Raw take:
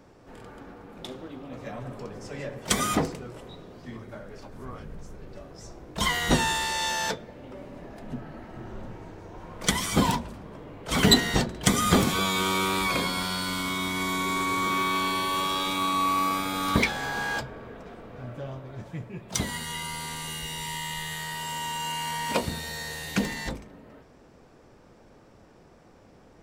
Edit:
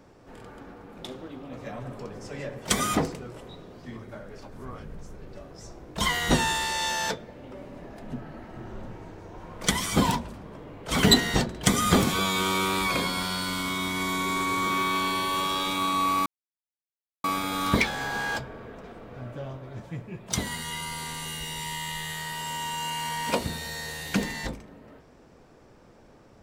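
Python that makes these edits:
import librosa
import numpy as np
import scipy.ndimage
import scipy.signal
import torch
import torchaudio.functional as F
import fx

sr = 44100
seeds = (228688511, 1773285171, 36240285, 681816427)

y = fx.edit(x, sr, fx.insert_silence(at_s=16.26, length_s=0.98), tone=tone)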